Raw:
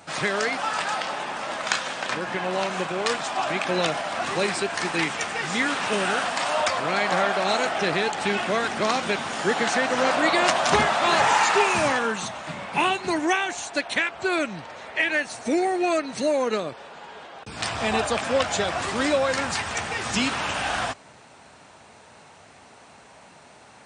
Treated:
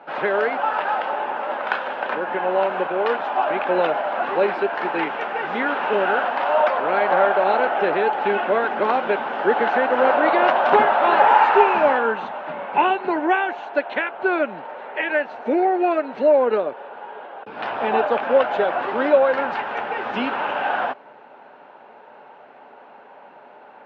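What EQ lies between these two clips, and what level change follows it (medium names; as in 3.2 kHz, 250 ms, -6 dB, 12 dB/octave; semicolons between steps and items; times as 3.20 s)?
cabinet simulation 190–3300 Hz, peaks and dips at 240 Hz +4 dB, 410 Hz +4 dB, 610 Hz +6 dB, 880 Hz +7 dB, 1.5 kHz +8 dB, 2.8 kHz +4 dB; peaking EQ 550 Hz +11.5 dB 2.6 oct; band-stop 650 Hz, Q 12; -8.5 dB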